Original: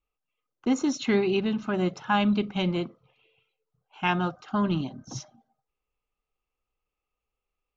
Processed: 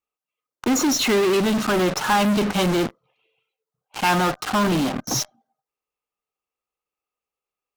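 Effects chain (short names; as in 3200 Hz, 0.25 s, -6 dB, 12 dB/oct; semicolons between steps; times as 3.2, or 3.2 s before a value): HPF 390 Hz 6 dB/oct; bell 2900 Hz -3.5 dB 1.1 oct; in parallel at -7.5 dB: fuzz box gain 54 dB, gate -48 dBFS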